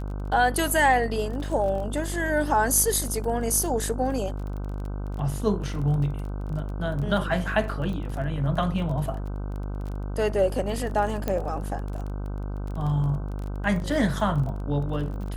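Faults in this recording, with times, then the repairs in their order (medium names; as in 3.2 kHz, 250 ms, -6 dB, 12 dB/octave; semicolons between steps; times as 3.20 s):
buzz 50 Hz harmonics 31 -31 dBFS
crackle 23 per s -33 dBFS
11.28 s: pop -13 dBFS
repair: de-click; de-hum 50 Hz, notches 31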